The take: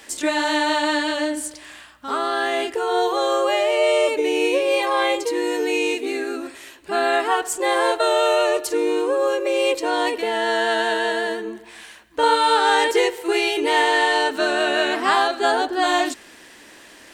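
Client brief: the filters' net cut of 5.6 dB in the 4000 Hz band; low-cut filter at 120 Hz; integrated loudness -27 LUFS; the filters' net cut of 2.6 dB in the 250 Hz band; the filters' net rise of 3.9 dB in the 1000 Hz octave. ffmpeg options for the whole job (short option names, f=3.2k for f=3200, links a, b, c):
-af "highpass=120,equalizer=f=250:t=o:g=-4.5,equalizer=f=1k:t=o:g=5.5,equalizer=f=4k:t=o:g=-8,volume=-8dB"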